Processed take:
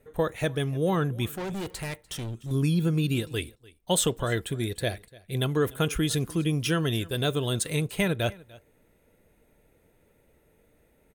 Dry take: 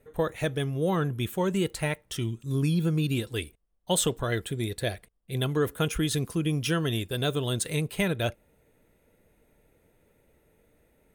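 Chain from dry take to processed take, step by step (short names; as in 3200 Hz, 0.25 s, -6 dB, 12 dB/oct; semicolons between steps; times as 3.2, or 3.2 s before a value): 1.35–2.51 hard clip -32 dBFS, distortion -14 dB; echo 0.295 s -22.5 dB; gain +1 dB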